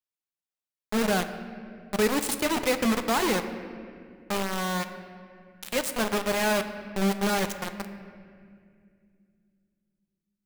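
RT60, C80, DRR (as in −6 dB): 2.3 s, 11.0 dB, 8.0 dB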